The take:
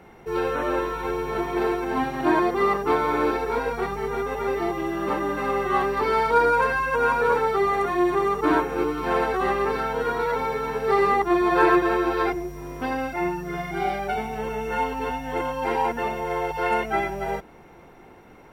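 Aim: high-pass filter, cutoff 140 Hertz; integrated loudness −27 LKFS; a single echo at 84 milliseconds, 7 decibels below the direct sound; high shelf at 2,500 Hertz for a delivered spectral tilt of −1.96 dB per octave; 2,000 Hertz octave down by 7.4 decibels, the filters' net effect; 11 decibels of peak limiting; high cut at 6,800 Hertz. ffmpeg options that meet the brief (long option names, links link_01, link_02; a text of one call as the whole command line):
ffmpeg -i in.wav -af "highpass=140,lowpass=6800,equalizer=frequency=2000:width_type=o:gain=-8,highshelf=frequency=2500:gain=-5.5,alimiter=limit=-19.5dB:level=0:latency=1,aecho=1:1:84:0.447,volume=1dB" out.wav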